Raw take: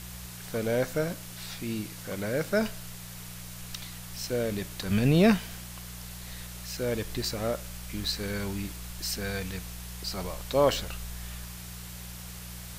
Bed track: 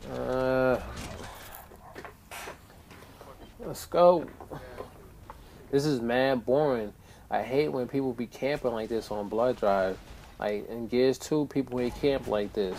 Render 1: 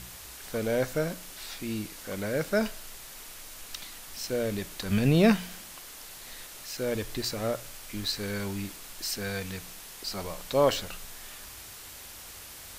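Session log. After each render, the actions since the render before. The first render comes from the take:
hum removal 60 Hz, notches 3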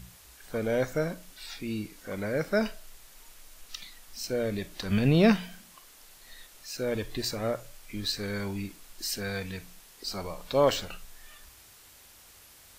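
noise reduction from a noise print 9 dB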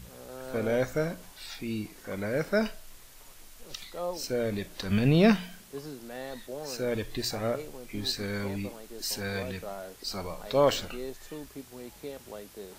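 mix in bed track −14.5 dB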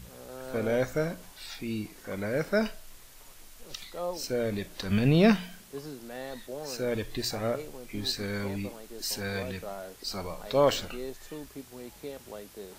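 no processing that can be heard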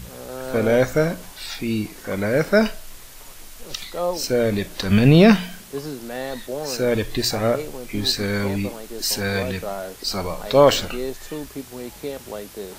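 level +10 dB
brickwall limiter −2 dBFS, peak gain reduction 3 dB

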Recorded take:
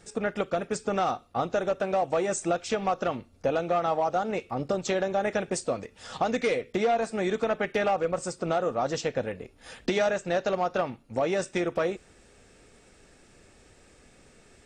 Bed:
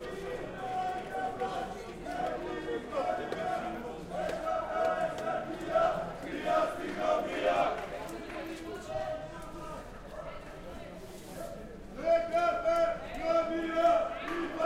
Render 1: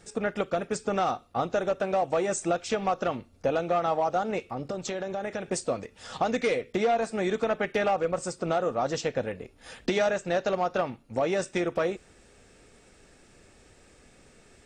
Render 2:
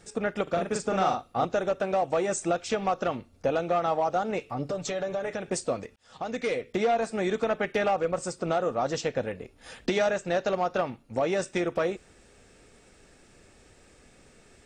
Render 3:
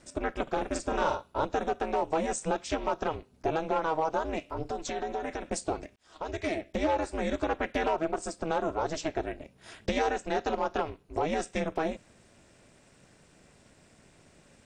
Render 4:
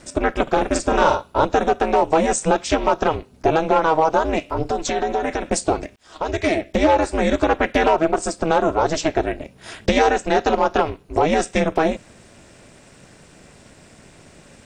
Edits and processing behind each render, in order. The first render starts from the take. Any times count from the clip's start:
0:04.45–0:05.50: downward compressor 3 to 1, threshold −30 dBFS
0:00.43–0:01.45: double-tracking delay 42 ms −3 dB; 0:04.40–0:05.35: comb filter 6.9 ms; 0:05.96–0:06.96: fade in equal-power
ring modulation 160 Hz
level +12 dB

